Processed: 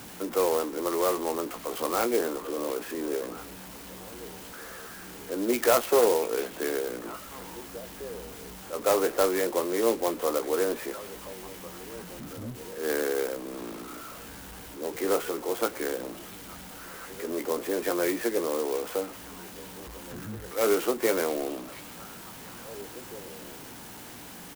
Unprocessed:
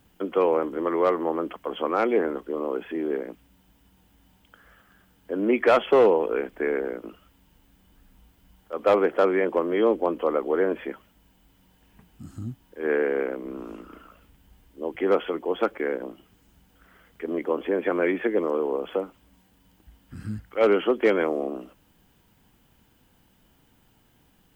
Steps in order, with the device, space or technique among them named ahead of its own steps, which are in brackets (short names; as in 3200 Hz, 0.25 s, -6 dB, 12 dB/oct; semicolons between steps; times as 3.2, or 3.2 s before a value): HPF 300 Hz 6 dB/oct; doubler 17 ms -9 dB; early CD player with a faulty converter (zero-crossing step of -34 dBFS; clock jitter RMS 0.07 ms); delay with a stepping band-pass 0.693 s, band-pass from 3000 Hz, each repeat -1.4 oct, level -12 dB; gain -3.5 dB